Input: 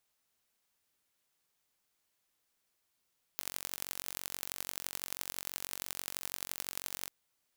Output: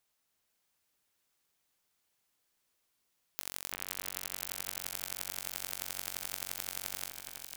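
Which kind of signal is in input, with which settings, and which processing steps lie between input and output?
impulse train 46.1 per second, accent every 4, −8.5 dBFS 3.69 s
echo with a time of its own for lows and highs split 2,800 Hz, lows 337 ms, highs 496 ms, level −6 dB

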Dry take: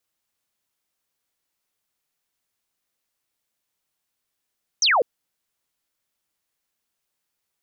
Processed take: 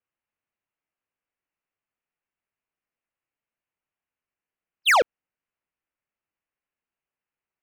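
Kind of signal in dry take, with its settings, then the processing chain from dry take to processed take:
single falling chirp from 6,500 Hz, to 430 Hz, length 0.20 s sine, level −15 dB
Butterworth low-pass 2,900 Hz 72 dB per octave
leveller curve on the samples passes 3

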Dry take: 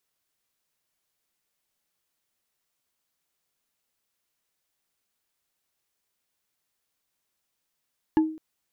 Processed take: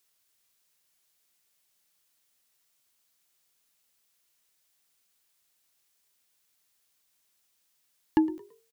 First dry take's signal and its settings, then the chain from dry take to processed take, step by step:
struck wood bar, length 0.21 s, lowest mode 315 Hz, decay 0.45 s, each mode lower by 9 dB, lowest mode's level −14 dB
high-shelf EQ 2,100 Hz +8 dB
echo with shifted repeats 111 ms, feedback 34%, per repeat +46 Hz, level −20 dB

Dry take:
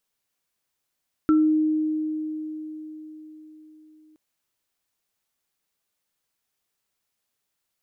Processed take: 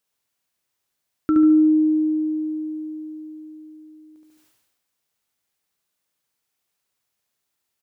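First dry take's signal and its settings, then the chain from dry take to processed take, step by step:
inharmonic partials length 2.87 s, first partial 310 Hz, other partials 1,340 Hz, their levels −10 dB, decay 4.47 s, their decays 0.28 s, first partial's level −14 dB
high-pass filter 41 Hz
repeating echo 71 ms, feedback 41%, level −4 dB
level that may fall only so fast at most 44 dB per second

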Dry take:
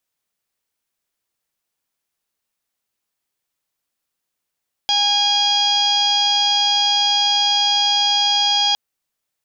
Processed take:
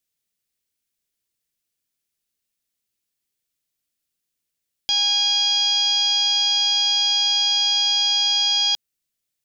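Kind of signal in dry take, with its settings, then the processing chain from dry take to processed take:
steady harmonic partials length 3.86 s, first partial 819 Hz, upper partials −14/−11/4.5/−10/0/−10/−13.5 dB, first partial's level −21 dB
parametric band 940 Hz −12.5 dB 1.7 octaves

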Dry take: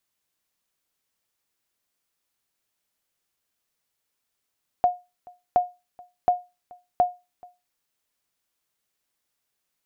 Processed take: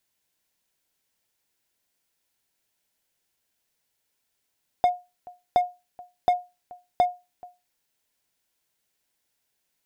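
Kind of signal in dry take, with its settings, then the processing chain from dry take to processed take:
ping with an echo 717 Hz, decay 0.25 s, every 0.72 s, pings 4, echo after 0.43 s, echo −26 dB −11 dBFS
notch filter 1,200 Hz, Q 5.8
in parallel at −8.5 dB: wave folding −24.5 dBFS

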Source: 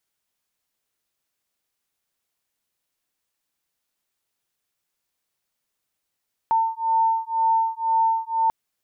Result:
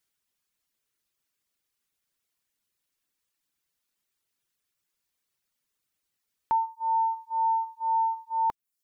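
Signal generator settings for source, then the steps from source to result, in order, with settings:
two tones that beat 900 Hz, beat 2 Hz, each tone −21.5 dBFS 1.99 s
reverb reduction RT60 0.68 s
parametric band 710 Hz −5.5 dB 1 octave

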